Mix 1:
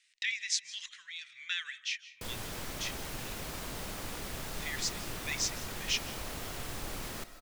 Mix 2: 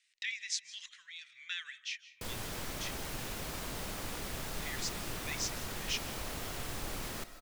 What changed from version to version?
speech -4.5 dB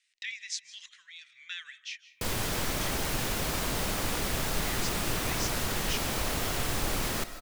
background +9.5 dB

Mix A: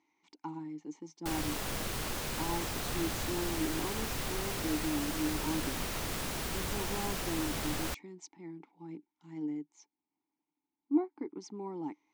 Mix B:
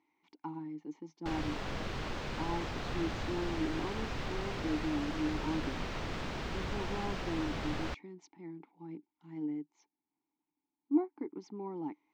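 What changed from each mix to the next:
master: add distance through air 180 m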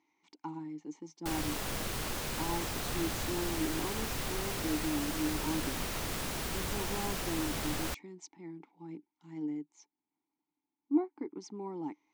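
master: remove distance through air 180 m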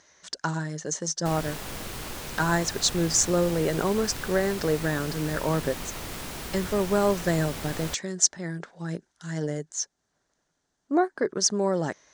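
speech: remove vowel filter u

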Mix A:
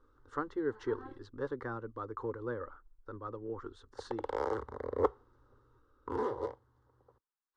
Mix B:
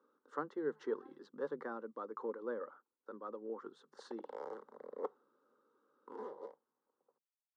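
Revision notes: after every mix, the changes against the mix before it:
background -9.5 dB; master: add rippled Chebyshev high-pass 150 Hz, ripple 6 dB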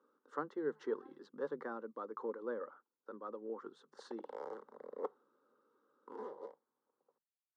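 no change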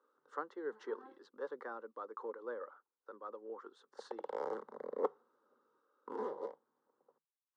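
speech: add high-pass 440 Hz 12 dB/octave; background +6.0 dB

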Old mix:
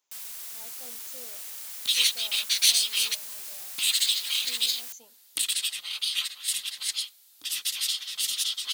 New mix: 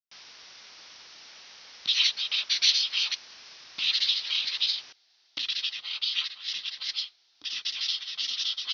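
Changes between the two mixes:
speech: muted; master: add steep low-pass 5.8 kHz 96 dB/octave

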